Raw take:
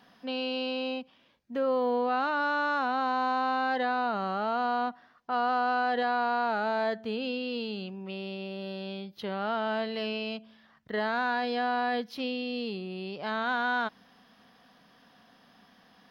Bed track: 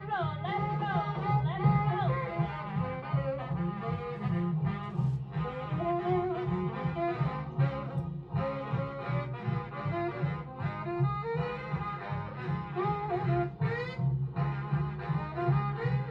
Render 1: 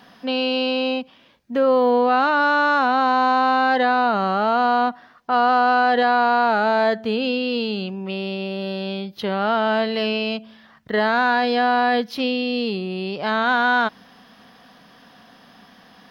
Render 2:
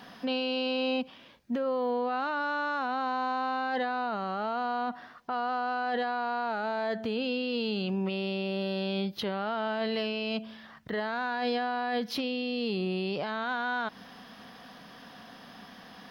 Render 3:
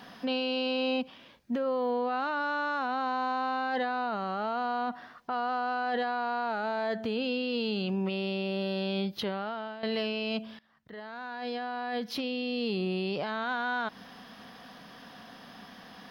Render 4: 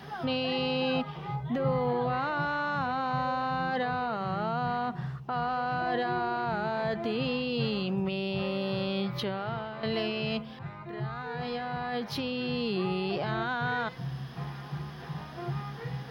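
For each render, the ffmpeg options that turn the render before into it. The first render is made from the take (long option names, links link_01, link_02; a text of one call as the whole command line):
ffmpeg -i in.wav -af "volume=10.5dB" out.wav
ffmpeg -i in.wav -af "acompressor=threshold=-21dB:ratio=6,alimiter=limit=-23.5dB:level=0:latency=1:release=22" out.wav
ffmpeg -i in.wav -filter_complex "[0:a]asplit=3[link_01][link_02][link_03];[link_01]atrim=end=9.83,asetpts=PTS-STARTPTS,afade=type=out:start_time=9.25:duration=0.58:silence=0.211349[link_04];[link_02]atrim=start=9.83:end=10.59,asetpts=PTS-STARTPTS,afade=type=in:duration=0.004:curve=hsin:silence=0.211349,afade=type=out:start_time=0.756:duration=0.004:curve=hsin:silence=0.0891251[link_05];[link_03]atrim=start=10.59,asetpts=PTS-STARTPTS,afade=type=in:duration=1.96:silence=0.0891251[link_06];[link_04][link_05][link_06]concat=n=3:v=0:a=1" out.wav
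ffmpeg -i in.wav -i bed.wav -filter_complex "[1:a]volume=-6.5dB[link_01];[0:a][link_01]amix=inputs=2:normalize=0" out.wav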